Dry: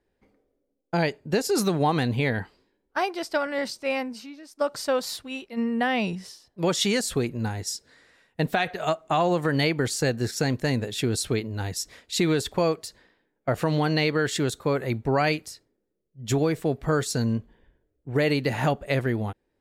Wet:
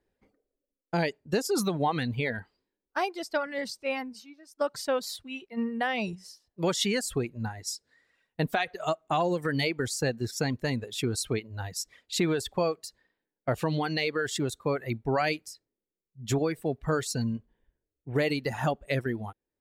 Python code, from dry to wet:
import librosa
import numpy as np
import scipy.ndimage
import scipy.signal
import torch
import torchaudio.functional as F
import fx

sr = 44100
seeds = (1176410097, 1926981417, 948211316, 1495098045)

y = fx.dereverb_blind(x, sr, rt60_s=1.7)
y = y * librosa.db_to_amplitude(-3.0)